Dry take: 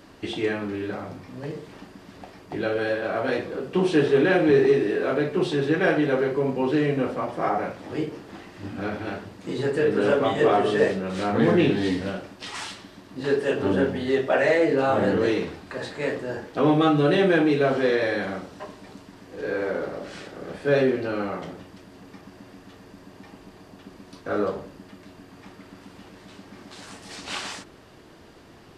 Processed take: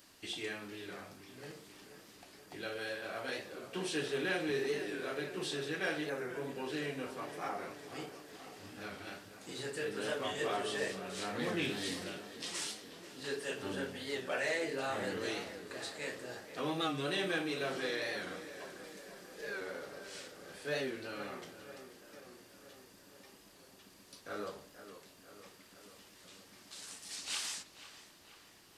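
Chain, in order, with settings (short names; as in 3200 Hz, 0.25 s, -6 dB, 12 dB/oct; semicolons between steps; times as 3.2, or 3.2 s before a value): pre-emphasis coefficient 0.9; 6.1–6.51 Butterworth band-stop 3400 Hz, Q 1.1; 11.62–12.04 high shelf 8300 Hz +7 dB; 18.83–19.61 comb 5.1 ms, depth 76%; tape echo 0.485 s, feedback 70%, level -11 dB, low-pass 2600 Hz; record warp 45 rpm, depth 100 cents; gain +1 dB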